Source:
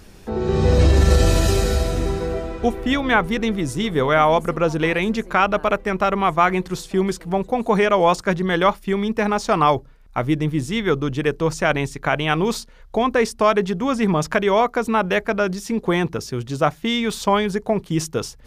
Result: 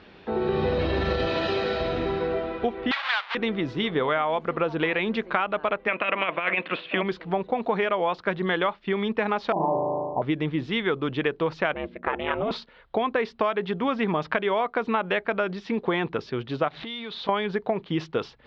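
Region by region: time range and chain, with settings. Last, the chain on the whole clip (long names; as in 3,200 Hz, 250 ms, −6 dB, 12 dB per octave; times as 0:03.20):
0:01.27–0:01.81: high-pass filter 65 Hz + low-shelf EQ 120 Hz −9.5 dB
0:02.91–0:03.35: each half-wave held at its own peak + high-pass filter 1,000 Hz 24 dB per octave
0:05.87–0:07.02: ceiling on every frequency bin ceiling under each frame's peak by 13 dB + loudspeaker in its box 200–3,300 Hz, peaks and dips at 400 Hz −6 dB, 600 Hz +6 dB, 850 Hz −8 dB, 2,600 Hz +10 dB + compressor whose output falls as the input rises −19 dBFS, ratio −0.5
0:09.52–0:10.22: Chebyshev low-pass filter 1,000 Hz, order 8 + flutter between parallel walls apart 6.4 metres, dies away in 1.3 s
0:11.74–0:12.51: high-frequency loss of the air 430 metres + ring modulation 210 Hz
0:16.68–0:17.29: converter with a step at zero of −30 dBFS + parametric band 3,900 Hz +7.5 dB 0.4 octaves + downward compressor 12 to 1, threshold −30 dBFS
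whole clip: high-pass filter 360 Hz 6 dB per octave; downward compressor 10 to 1, threshold −22 dBFS; Butterworth low-pass 3,900 Hz 36 dB per octave; level +1.5 dB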